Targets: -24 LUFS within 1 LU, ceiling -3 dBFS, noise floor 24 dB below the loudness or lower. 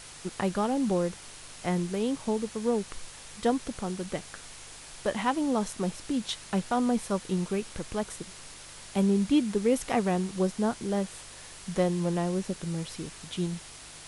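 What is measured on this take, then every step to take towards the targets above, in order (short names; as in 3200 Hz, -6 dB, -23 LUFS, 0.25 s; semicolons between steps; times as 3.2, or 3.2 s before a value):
hum 50 Hz; harmonics up to 150 Hz; hum level -57 dBFS; noise floor -47 dBFS; noise floor target -54 dBFS; loudness -30.0 LUFS; peak -13.0 dBFS; loudness target -24.0 LUFS
-> de-hum 50 Hz, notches 3; noise print and reduce 7 dB; gain +6 dB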